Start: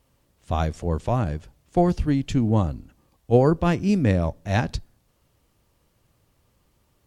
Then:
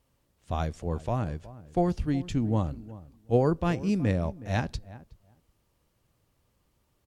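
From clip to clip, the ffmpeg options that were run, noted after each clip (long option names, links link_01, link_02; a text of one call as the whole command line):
ffmpeg -i in.wav -filter_complex "[0:a]asplit=2[link_01][link_02];[link_02]adelay=368,lowpass=frequency=1200:poles=1,volume=-17dB,asplit=2[link_03][link_04];[link_04]adelay=368,lowpass=frequency=1200:poles=1,volume=0.15[link_05];[link_01][link_03][link_05]amix=inputs=3:normalize=0,volume=-6dB" out.wav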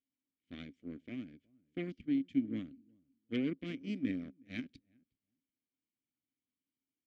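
ffmpeg -i in.wav -filter_complex "[0:a]aeval=exprs='0.266*(cos(1*acos(clip(val(0)/0.266,-1,1)))-cos(1*PI/2))+0.0668*(cos(5*acos(clip(val(0)/0.266,-1,1)))-cos(5*PI/2))+0.075*(cos(7*acos(clip(val(0)/0.266,-1,1)))-cos(7*PI/2))':channel_layout=same,asplit=3[link_01][link_02][link_03];[link_01]bandpass=frequency=270:width_type=q:width=8,volume=0dB[link_04];[link_02]bandpass=frequency=2290:width_type=q:width=8,volume=-6dB[link_05];[link_03]bandpass=frequency=3010:width_type=q:width=8,volume=-9dB[link_06];[link_04][link_05][link_06]amix=inputs=3:normalize=0" out.wav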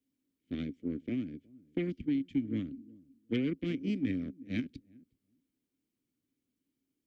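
ffmpeg -i in.wav -filter_complex "[0:a]lowshelf=frequency=560:width_type=q:width=1.5:gain=8.5,acrossover=split=120|720[link_01][link_02][link_03];[link_02]acompressor=threshold=-35dB:ratio=6[link_04];[link_01][link_04][link_03]amix=inputs=3:normalize=0,volume=3dB" out.wav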